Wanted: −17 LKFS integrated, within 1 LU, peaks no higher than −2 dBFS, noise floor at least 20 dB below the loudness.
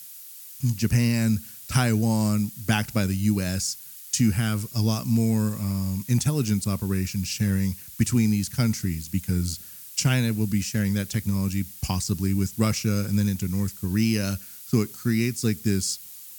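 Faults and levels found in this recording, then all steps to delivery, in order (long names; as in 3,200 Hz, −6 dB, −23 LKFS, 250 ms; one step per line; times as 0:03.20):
background noise floor −43 dBFS; target noise floor −45 dBFS; integrated loudness −25.0 LKFS; sample peak −6.0 dBFS; target loudness −17.0 LKFS
→ broadband denoise 6 dB, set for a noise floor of −43 dBFS
level +8 dB
brickwall limiter −2 dBFS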